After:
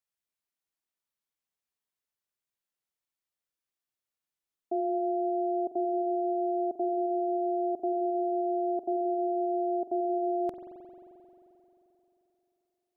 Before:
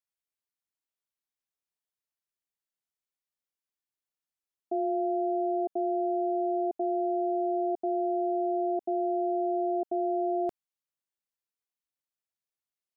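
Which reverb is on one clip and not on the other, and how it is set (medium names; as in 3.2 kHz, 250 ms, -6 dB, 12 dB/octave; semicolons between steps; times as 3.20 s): spring tank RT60 3.4 s, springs 44 ms, chirp 30 ms, DRR 5.5 dB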